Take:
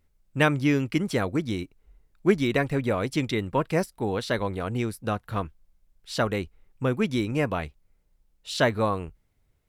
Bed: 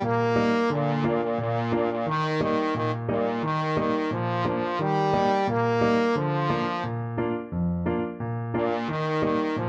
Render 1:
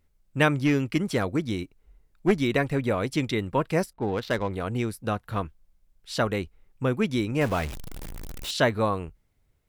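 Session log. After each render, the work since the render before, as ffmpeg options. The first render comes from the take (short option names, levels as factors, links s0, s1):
-filter_complex "[0:a]asettb=1/sr,asplit=3[s0][s1][s2];[s0]atrim=end=0.534[s3];[s1]atrim=start=0.53:end=2.38,asetpts=PTS-STARTPTS,afade=t=in:d=0.004:c=qsin,afade=t=out:st=1.846:d=0.004:c=qsin,aeval=exprs='clip(val(0),-1,0.119)':c=same[s4];[s2]atrim=start=2.376[s5];[s3][s4]acrossfade=d=0.004:c1=hsin:c2=qsin[s6];[s6][s5]acrossfade=d=0.004:c1=qsin:c2=hsin,asettb=1/sr,asplit=3[s7][s8][s9];[s7]atrim=end=3.934[s10];[s8]atrim=start=3.93:end=4.51,asetpts=PTS-STARTPTS,afade=t=in:d=0.004:c=qsin,afade=t=out:st=0.576:d=0.004:c=qsin,adynamicsmooth=sensitivity=6:basefreq=1500[s11];[s9]atrim=start=4.506[s12];[s10][s11]acrossfade=d=0.004:c1=hsin:c2=qsin[s13];[s13][s12]acrossfade=d=0.004:c1=qsin:c2=hsin,asettb=1/sr,asplit=3[s14][s15][s16];[s14]atrim=end=7.414[s17];[s15]atrim=start=7.41:end=8.51,asetpts=PTS-STARTPTS,afade=t=in:d=0.004:c=qsin,afade=t=out:st=1.096:d=0.004:c=qsin,aeval=exprs='val(0)+0.5*0.0316*sgn(val(0))':c=same[s18];[s16]atrim=start=8.506[s19];[s17][s18]acrossfade=d=0.004:c1=hsin:c2=qsin[s20];[s20][s19]acrossfade=d=0.004:c1=qsin:c2=hsin"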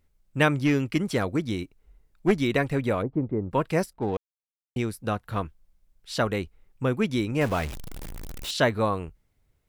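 -filter_complex "[0:a]asplit=3[s0][s1][s2];[s0]afade=t=out:st=3.01:d=0.02[s3];[s1]lowpass=f=1000:w=0.5412,lowpass=f=1000:w=1.3066,afade=t=in:st=3.01:d=0.02,afade=t=out:st=3.5:d=0.02[s4];[s2]afade=t=in:st=3.5:d=0.02[s5];[s3][s4][s5]amix=inputs=3:normalize=0,asplit=3[s6][s7][s8];[s6]atrim=end=4.17,asetpts=PTS-STARTPTS,afade=t=out:st=4.166:d=0.004:c=hsin[s9];[s7]atrim=start=4.17:end=4.76,asetpts=PTS-STARTPTS,volume=0[s10];[s8]atrim=start=4.76,asetpts=PTS-STARTPTS,afade=t=in:d=0.004:c=hsin[s11];[s9][s10][s11]concat=n=3:v=0:a=1"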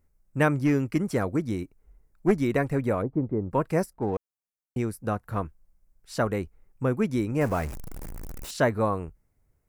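-af "equalizer=f=3400:t=o:w=0.98:g=-13.5"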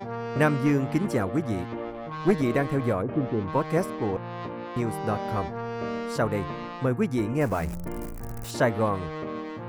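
-filter_complex "[1:a]volume=0.335[s0];[0:a][s0]amix=inputs=2:normalize=0"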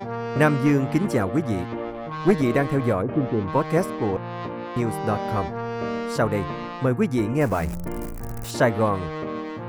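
-af "volume=1.5"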